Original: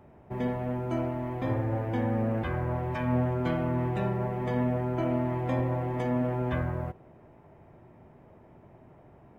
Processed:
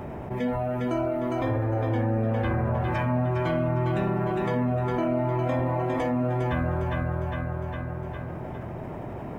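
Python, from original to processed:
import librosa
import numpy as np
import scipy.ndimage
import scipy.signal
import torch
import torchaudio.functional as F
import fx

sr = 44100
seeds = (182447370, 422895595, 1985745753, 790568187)

p1 = fx.noise_reduce_blind(x, sr, reduce_db=11)
p2 = p1 + fx.echo_feedback(p1, sr, ms=406, feedback_pct=37, wet_db=-5.0, dry=0)
y = fx.env_flatten(p2, sr, amount_pct=70)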